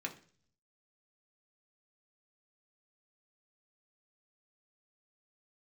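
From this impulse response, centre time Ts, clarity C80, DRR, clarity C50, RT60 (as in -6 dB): 10 ms, 18.5 dB, 0.5 dB, 13.5 dB, 0.45 s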